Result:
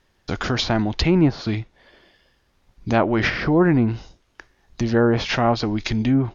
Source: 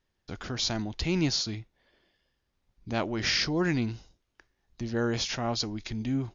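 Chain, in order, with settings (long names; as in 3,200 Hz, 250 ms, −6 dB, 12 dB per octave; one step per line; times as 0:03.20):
treble cut that deepens with the level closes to 1,200 Hz, closed at −23.5 dBFS
parametric band 1,000 Hz +3 dB 2.7 octaves
in parallel at −2.5 dB: downward compressor, threshold −36 dBFS, peak gain reduction 13.5 dB
on the sum: level +8.5 dB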